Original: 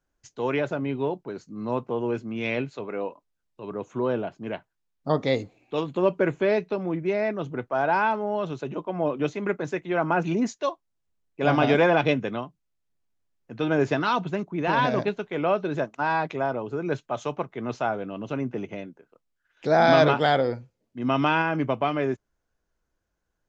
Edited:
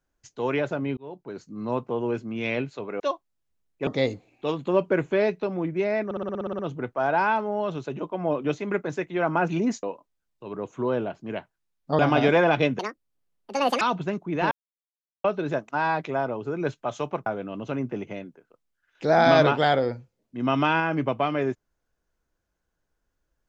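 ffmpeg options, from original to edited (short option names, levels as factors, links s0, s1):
-filter_complex "[0:a]asplit=20[s0][s1][s2][s3][s4][s5][s6][s7][s8][s9][s10][s11][s12][s13][s14][s15][s16][s17][s18][s19];[s0]atrim=end=0.97,asetpts=PTS-STARTPTS,afade=t=out:st=0.966:d=0.004:c=hsin[s20];[s1]atrim=start=0.97:end=3.002,asetpts=PTS-STARTPTS,afade=t=in:d=0.44[s21];[s2]atrim=start=10.578:end=11.452[s22];[s3]atrim=start=5.158:end=7.402[s23];[s4]atrim=start=7.338:end=7.402[s24];[s5]atrim=start=7.338:end=7.402[s25];[s6]atrim=start=7.338:end=7.402[s26];[s7]atrim=start=7.338:end=7.402[s27];[s8]atrim=start=7.338:end=7.402[s28];[s9]atrim=start=7.338:end=7.402[s29];[s10]atrim=start=7.338:end=7.402[s30];[s11]atrim=start=7.338:end=7.402[s31];[s12]atrim=start=7.338:end=10.582[s32];[s13]atrim=start=2.998:end=5.162[s33];[s14]atrim=start=11.448:end=12.254[s34];[s15]atrim=start=12.25:end=14.07,asetpts=PTS-STARTPTS,asetrate=78498,aresample=44100,atrim=end_sample=45091,asetpts=PTS-STARTPTS[s35];[s16]atrim=start=14.066:end=14.77,asetpts=PTS-STARTPTS,afade=t=out:st=0.7:d=0.004:c=hsin[s36];[s17]atrim=start=14.77:end=15.5,asetpts=PTS-STARTPTS,volume=0[s37];[s18]atrim=start=15.5:end=17.522,asetpts=PTS-STARTPTS,afade=t=in:d=0.004:c=hsin[s38];[s19]atrim=start=17.878[s39];[s20][s21]concat=n=2:v=0:a=1[s40];[s40][s22]acrossfade=d=0.004:c1=hsin:c2=hsin[s41];[s41][s23]acrossfade=d=0.004:c1=hsin:c2=hsin[s42];[s42][s24]acrossfade=d=0.004:c1=hsin:c2=hsin[s43];[s43][s25]acrossfade=d=0.004:c1=hsin:c2=hsin[s44];[s44][s26]acrossfade=d=0.004:c1=hsin:c2=hsin[s45];[s45][s27]acrossfade=d=0.004:c1=hsin:c2=hsin[s46];[s46][s28]acrossfade=d=0.004:c1=hsin:c2=hsin[s47];[s47][s29]acrossfade=d=0.004:c1=hsin:c2=hsin[s48];[s48][s30]acrossfade=d=0.004:c1=hsin:c2=hsin[s49];[s49][s31]acrossfade=d=0.004:c1=hsin:c2=hsin[s50];[s50][s32]acrossfade=d=0.004:c1=hsin:c2=hsin[s51];[s51][s33]acrossfade=d=0.004:c1=hsin:c2=hsin[s52];[s52][s34]acrossfade=d=0.004:c1=hsin:c2=hsin[s53];[s53][s35]acrossfade=d=0.004:c1=hsin:c2=hsin[s54];[s36][s37][s38]concat=n=3:v=0:a=1[s55];[s54][s55]acrossfade=d=0.004:c1=hsin:c2=hsin[s56];[s56][s39]acrossfade=d=0.004:c1=hsin:c2=hsin"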